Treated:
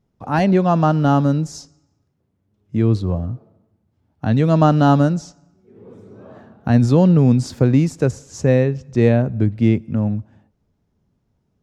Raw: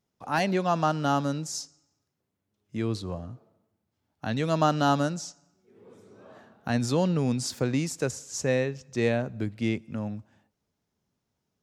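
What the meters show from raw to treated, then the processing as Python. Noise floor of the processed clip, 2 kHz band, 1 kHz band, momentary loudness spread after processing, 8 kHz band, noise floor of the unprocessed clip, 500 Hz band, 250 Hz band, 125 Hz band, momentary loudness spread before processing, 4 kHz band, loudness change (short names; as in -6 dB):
-69 dBFS, +3.5 dB, +6.5 dB, 12 LU, -2.0 dB, -81 dBFS, +9.0 dB, +12.0 dB, +14.5 dB, 13 LU, 0.0 dB, +11.0 dB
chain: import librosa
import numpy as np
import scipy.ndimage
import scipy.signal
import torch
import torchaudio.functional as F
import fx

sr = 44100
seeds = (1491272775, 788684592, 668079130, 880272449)

y = fx.tilt_eq(x, sr, slope=-3.0)
y = y * librosa.db_to_amplitude(6.0)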